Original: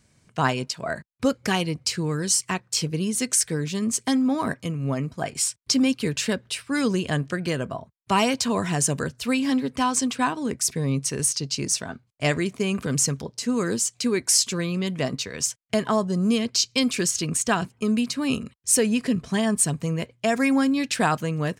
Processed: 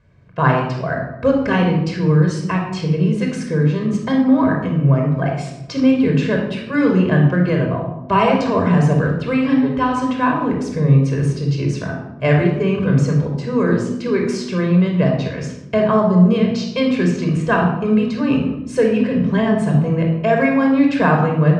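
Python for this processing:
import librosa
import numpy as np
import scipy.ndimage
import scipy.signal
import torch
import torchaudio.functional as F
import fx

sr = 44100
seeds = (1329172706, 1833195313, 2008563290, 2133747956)

y = scipy.signal.sosfilt(scipy.signal.butter(2, 2000.0, 'lowpass', fs=sr, output='sos'), x)
y = fx.room_shoebox(y, sr, seeds[0], volume_m3=3000.0, walls='furnished', distance_m=5.3)
y = y * 10.0 ** (3.0 / 20.0)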